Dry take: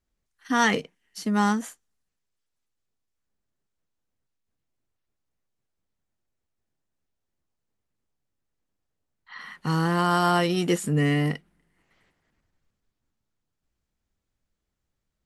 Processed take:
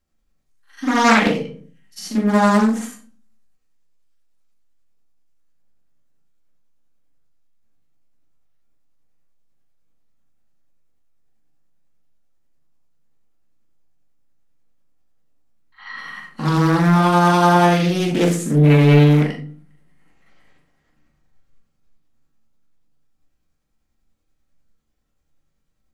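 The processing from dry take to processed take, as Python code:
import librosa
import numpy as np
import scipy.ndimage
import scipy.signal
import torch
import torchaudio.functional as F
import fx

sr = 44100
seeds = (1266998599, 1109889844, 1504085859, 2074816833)

y = fx.stretch_grains(x, sr, factor=1.7, grain_ms=196.0)
y = fx.room_shoebox(y, sr, seeds[0], volume_m3=340.0, walls='furnished', distance_m=2.2)
y = fx.doppler_dist(y, sr, depth_ms=0.64)
y = y * librosa.db_to_amplitude(3.5)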